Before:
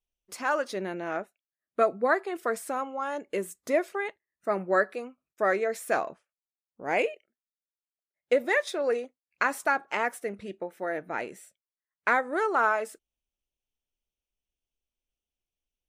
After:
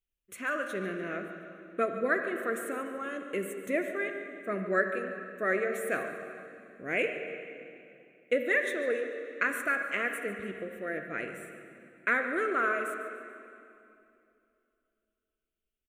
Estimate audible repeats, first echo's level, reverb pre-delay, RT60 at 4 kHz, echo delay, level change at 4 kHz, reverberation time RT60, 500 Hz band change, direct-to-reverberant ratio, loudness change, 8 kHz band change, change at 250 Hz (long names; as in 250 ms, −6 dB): 2, −14.5 dB, 31 ms, 2.3 s, 145 ms, −4.0 dB, 2.7 s, −3.5 dB, 5.0 dB, −3.0 dB, −4.0 dB, 0.0 dB